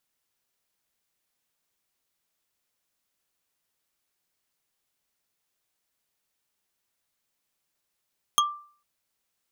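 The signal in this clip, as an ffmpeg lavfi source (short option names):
-f lavfi -i "aevalsrc='0.15*pow(10,-3*t/0.46)*sin(2*PI*1180*t)+0.133*pow(10,-3*t/0.136)*sin(2*PI*3253.3*t)+0.119*pow(10,-3*t/0.061)*sin(2*PI*6376.7*t)+0.106*pow(10,-3*t/0.033)*sin(2*PI*10540.9*t)+0.0944*pow(10,-3*t/0.021)*sin(2*PI*15741.2*t)':d=0.45:s=44100"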